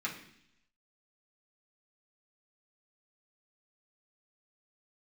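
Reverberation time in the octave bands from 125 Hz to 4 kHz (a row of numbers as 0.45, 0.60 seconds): 0.90, 0.85, 0.70, 0.65, 0.85, 0.90 seconds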